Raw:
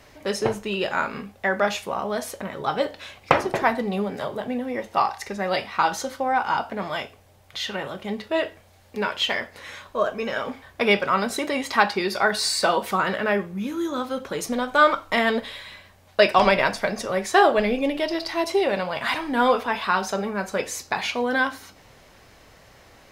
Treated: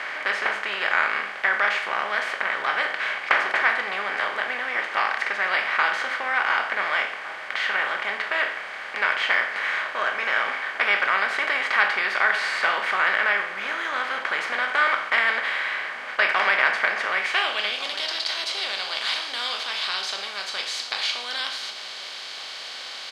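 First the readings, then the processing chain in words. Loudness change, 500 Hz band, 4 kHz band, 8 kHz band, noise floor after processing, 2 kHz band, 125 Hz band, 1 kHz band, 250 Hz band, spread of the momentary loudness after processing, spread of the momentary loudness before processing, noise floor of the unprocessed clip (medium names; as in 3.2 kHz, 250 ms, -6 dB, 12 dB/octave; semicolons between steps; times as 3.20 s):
+0.5 dB, -10.0 dB, +3.0 dB, no reading, -36 dBFS, +6.0 dB, under -20 dB, -2.5 dB, -19.0 dB, 8 LU, 11 LU, -53 dBFS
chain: spectral levelling over time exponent 0.4; band-pass sweep 1.9 kHz -> 4 kHz, 17.09–17.90 s; echo from a far wall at 250 m, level -13 dB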